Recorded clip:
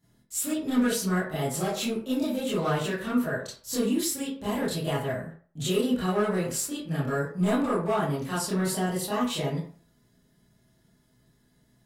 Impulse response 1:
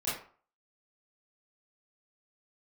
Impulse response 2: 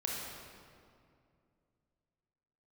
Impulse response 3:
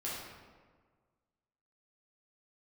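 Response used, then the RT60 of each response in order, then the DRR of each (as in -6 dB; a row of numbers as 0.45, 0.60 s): 1; 0.45, 2.4, 1.6 s; -11.5, -3.5, -8.0 dB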